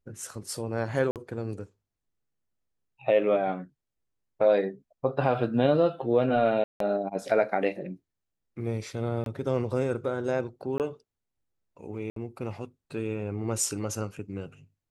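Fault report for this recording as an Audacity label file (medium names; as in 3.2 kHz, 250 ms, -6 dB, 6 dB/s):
1.110000	1.160000	dropout 48 ms
6.640000	6.800000	dropout 163 ms
9.240000	9.260000	dropout 22 ms
10.780000	10.800000	dropout 18 ms
12.100000	12.160000	dropout 63 ms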